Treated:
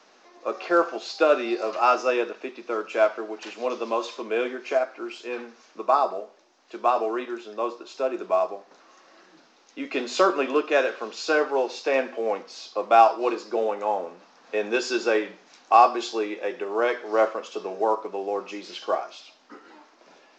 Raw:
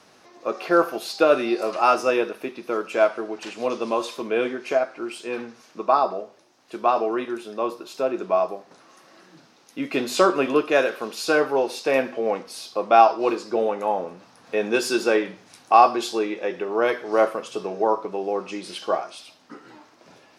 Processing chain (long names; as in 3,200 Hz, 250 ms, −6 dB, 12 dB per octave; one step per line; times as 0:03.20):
Bessel high-pass filter 320 Hz, order 8
high-shelf EQ 3,900 Hz −3 dB
level −1 dB
mu-law 128 kbit/s 16,000 Hz